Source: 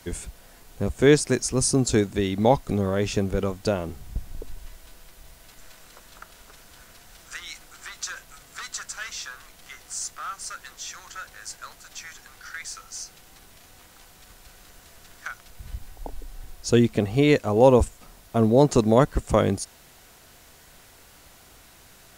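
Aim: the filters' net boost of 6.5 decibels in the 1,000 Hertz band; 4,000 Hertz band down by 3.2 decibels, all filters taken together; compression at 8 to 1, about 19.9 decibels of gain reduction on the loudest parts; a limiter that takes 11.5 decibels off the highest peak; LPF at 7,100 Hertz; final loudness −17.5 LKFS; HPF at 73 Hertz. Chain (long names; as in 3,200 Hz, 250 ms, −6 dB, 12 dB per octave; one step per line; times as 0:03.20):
high-pass filter 73 Hz
low-pass filter 7,100 Hz
parametric band 1,000 Hz +8.5 dB
parametric band 4,000 Hz −4 dB
downward compressor 8 to 1, threshold −30 dBFS
level +22 dB
brickwall limiter −4 dBFS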